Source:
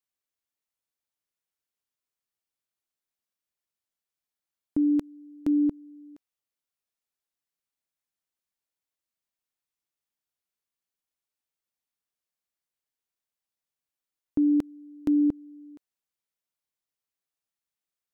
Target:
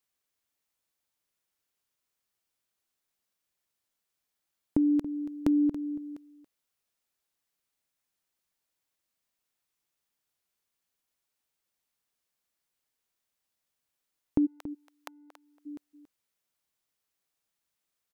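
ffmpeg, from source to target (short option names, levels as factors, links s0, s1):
-filter_complex "[0:a]acompressor=threshold=0.0355:ratio=6,asplit=3[s0][s1][s2];[s0]afade=t=out:st=14.45:d=0.02[s3];[s1]highpass=f=760:w=0.5412,highpass=f=760:w=1.3066,afade=t=in:st=14.45:d=0.02,afade=t=out:st=15.65:d=0.02[s4];[s2]afade=t=in:st=15.65:d=0.02[s5];[s3][s4][s5]amix=inputs=3:normalize=0,aecho=1:1:280:0.2,volume=2"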